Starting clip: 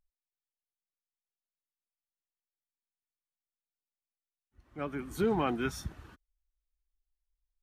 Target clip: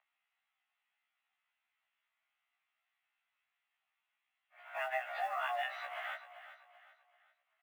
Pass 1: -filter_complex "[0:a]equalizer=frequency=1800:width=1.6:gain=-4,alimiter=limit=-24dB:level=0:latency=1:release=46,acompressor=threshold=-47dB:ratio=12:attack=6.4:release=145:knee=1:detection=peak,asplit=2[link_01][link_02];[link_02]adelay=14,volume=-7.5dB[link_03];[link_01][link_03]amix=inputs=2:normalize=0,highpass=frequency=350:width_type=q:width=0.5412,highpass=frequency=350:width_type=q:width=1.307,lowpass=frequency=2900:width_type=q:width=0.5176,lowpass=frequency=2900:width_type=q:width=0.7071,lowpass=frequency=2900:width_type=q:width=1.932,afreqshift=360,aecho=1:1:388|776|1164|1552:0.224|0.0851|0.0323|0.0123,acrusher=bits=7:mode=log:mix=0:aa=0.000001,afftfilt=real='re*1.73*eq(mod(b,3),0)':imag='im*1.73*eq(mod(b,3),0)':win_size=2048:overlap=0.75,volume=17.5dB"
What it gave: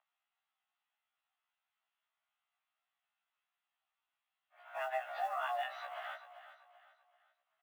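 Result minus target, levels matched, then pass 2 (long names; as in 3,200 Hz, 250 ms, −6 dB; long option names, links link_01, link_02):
2,000 Hz band −3.0 dB
-filter_complex "[0:a]equalizer=frequency=1800:width=1.6:gain=5,alimiter=limit=-24dB:level=0:latency=1:release=46,acompressor=threshold=-47dB:ratio=12:attack=6.4:release=145:knee=1:detection=peak,asplit=2[link_01][link_02];[link_02]adelay=14,volume=-7.5dB[link_03];[link_01][link_03]amix=inputs=2:normalize=0,highpass=frequency=350:width_type=q:width=0.5412,highpass=frequency=350:width_type=q:width=1.307,lowpass=frequency=2900:width_type=q:width=0.5176,lowpass=frequency=2900:width_type=q:width=0.7071,lowpass=frequency=2900:width_type=q:width=1.932,afreqshift=360,aecho=1:1:388|776|1164|1552:0.224|0.0851|0.0323|0.0123,acrusher=bits=7:mode=log:mix=0:aa=0.000001,afftfilt=real='re*1.73*eq(mod(b,3),0)':imag='im*1.73*eq(mod(b,3),0)':win_size=2048:overlap=0.75,volume=17.5dB"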